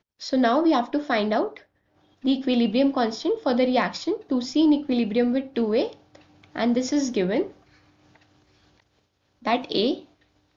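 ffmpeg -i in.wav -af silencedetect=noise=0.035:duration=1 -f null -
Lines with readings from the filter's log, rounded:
silence_start: 7.46
silence_end: 9.46 | silence_duration: 1.99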